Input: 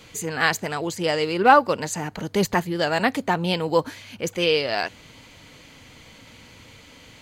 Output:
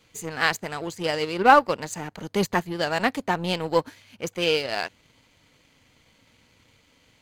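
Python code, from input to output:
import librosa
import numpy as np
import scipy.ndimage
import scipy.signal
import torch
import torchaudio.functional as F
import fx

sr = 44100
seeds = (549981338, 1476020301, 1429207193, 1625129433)

p1 = fx.power_curve(x, sr, exponent=1.4)
p2 = 10.0 ** (-19.0 / 20.0) * np.tanh(p1 / 10.0 ** (-19.0 / 20.0))
y = p1 + F.gain(torch.from_numpy(p2), -5.5).numpy()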